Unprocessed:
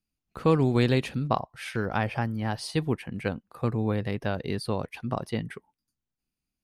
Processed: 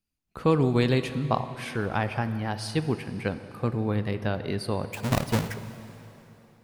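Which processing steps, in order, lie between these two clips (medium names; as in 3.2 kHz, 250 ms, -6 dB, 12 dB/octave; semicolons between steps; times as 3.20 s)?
4.93–5.54 s: square wave that keeps the level; plate-style reverb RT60 3.3 s, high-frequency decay 0.9×, DRR 10.5 dB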